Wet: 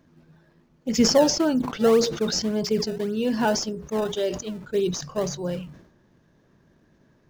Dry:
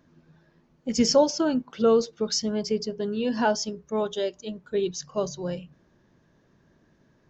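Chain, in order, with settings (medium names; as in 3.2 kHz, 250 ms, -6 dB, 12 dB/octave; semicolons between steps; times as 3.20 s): in parallel at -11 dB: decimation with a swept rate 23×, swing 160% 1.8 Hz; on the sum: decay stretcher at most 84 dB/s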